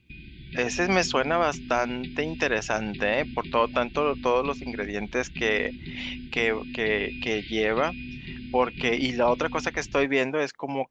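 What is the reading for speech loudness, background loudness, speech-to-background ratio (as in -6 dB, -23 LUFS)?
-26.5 LUFS, -39.5 LUFS, 13.0 dB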